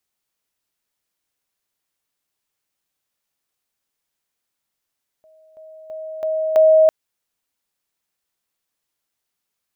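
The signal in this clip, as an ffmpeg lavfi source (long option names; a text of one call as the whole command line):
ffmpeg -f lavfi -i "aevalsrc='pow(10,(-48.5+10*floor(t/0.33))/20)*sin(2*PI*632*t)':duration=1.65:sample_rate=44100" out.wav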